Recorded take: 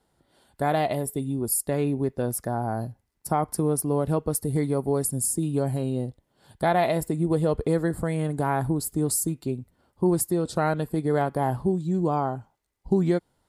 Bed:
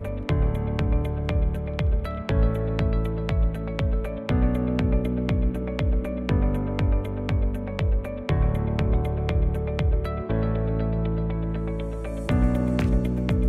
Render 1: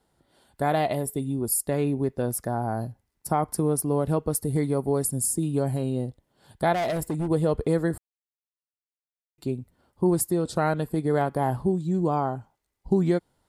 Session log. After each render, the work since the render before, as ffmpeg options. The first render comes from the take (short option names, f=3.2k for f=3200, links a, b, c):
-filter_complex "[0:a]asettb=1/sr,asplit=3[a][b][c];[a]atrim=end=6.734[d];[b]atrim=start=6.73:end=7.28,asetpts=PTS-STARTPTS,afade=t=in:d=0.004:c=qsin,afade=t=out:st=0.546:d=0.004:c=qsin,asoftclip=type=hard:threshold=-23.5dB[e];[c]atrim=start=7.276[f];[d][e]acrossfade=d=0.004:c1=hsin:c2=qsin[g];[g][f]acrossfade=d=0.004:c1=qsin:c2=hsin,asplit=3[h][i][j];[h]atrim=end=7.98,asetpts=PTS-STARTPTS,afade=t=out:st=7.976:d=0.004:c=hsin[k];[i]atrim=start=7.98:end=9.38,asetpts=PTS-STARTPTS,volume=0[l];[j]atrim=start=9.38,asetpts=PTS-STARTPTS,afade=t=in:d=0.004:c=hsin[m];[k][l][m]concat=n=3:v=0:a=1"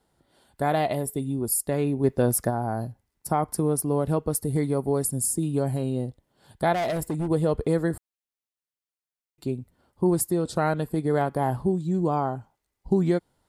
-filter_complex "[0:a]asplit=3[a][b][c];[a]afade=t=out:st=2.03:d=0.02[d];[b]acontrast=35,afade=t=in:st=2.03:d=0.02,afade=t=out:st=2.49:d=0.02[e];[c]afade=t=in:st=2.49:d=0.02[f];[d][e][f]amix=inputs=3:normalize=0"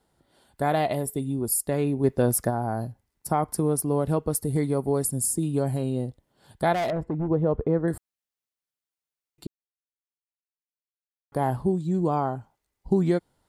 -filter_complex "[0:a]asettb=1/sr,asplit=3[a][b][c];[a]atrim=end=6.904[d];[b]atrim=start=6.9:end=7.88,asetpts=PTS-STARTPTS,afade=t=in:d=0.004:c=qsin,afade=t=out:st=0.976:d=0.004:c=qsin,lowpass=1.3k[e];[c]atrim=start=7.876[f];[d][e]acrossfade=d=0.004:c1=hsin:c2=qsin[g];[g][f]acrossfade=d=0.004:c1=qsin:c2=hsin,asplit=3[h][i][j];[h]atrim=end=9.47,asetpts=PTS-STARTPTS,afade=t=out:st=9.466:d=0.004:c=hsin[k];[i]atrim=start=9.47:end=11.32,asetpts=PTS-STARTPTS,volume=0[l];[j]atrim=start=11.32,asetpts=PTS-STARTPTS,afade=t=in:d=0.004:c=hsin[m];[k][l][m]concat=n=3:v=0:a=1"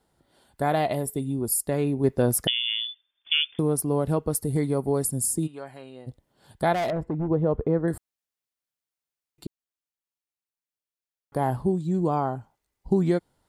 -filter_complex "[0:a]asettb=1/sr,asplit=3[a][b][c];[a]atrim=end=2.474[d];[b]atrim=start=2.47:end=3.59,asetpts=PTS-STARTPTS,afade=t=in:d=0.004:c=qsin,afade=t=out:st=1.116:d=0.004:c=qsin,lowpass=f=3.1k:t=q:w=0.5098,lowpass=f=3.1k:t=q:w=0.6013,lowpass=f=3.1k:t=q:w=0.9,lowpass=f=3.1k:t=q:w=2.563,afreqshift=-3600[e];[c]atrim=start=3.586[f];[d][e]acrossfade=d=0.004:c1=hsin:c2=qsin[g];[g][f]acrossfade=d=0.004:c1=qsin:c2=hsin,asplit=3[h][i][j];[h]afade=t=out:st=5.46:d=0.02[k];[i]bandpass=f=1.8k:t=q:w=1.1,afade=t=in:st=5.46:d=0.02,afade=t=out:st=6.06:d=0.02[l];[j]afade=t=in:st=6.06:d=0.02[m];[k][l][m]amix=inputs=3:normalize=0"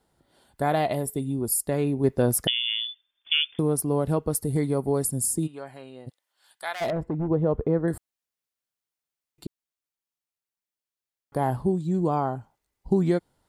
-filter_complex "[0:a]asplit=3[a][b][c];[a]afade=t=out:st=6.08:d=0.02[d];[b]highpass=1.4k,afade=t=in:st=6.08:d=0.02,afade=t=out:st=6.8:d=0.02[e];[c]afade=t=in:st=6.8:d=0.02[f];[d][e][f]amix=inputs=3:normalize=0"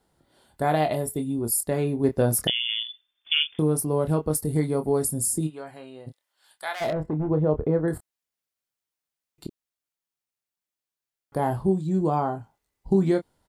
-filter_complex "[0:a]asplit=2[a][b];[b]adelay=26,volume=-8dB[c];[a][c]amix=inputs=2:normalize=0"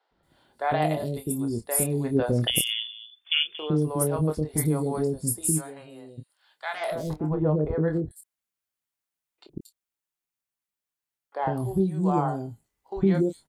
-filter_complex "[0:a]acrossover=split=500|4700[a][b][c];[a]adelay=110[d];[c]adelay=230[e];[d][b][e]amix=inputs=3:normalize=0"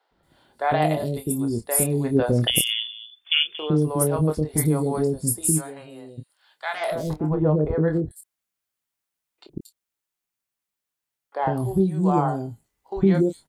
-af "volume=3.5dB"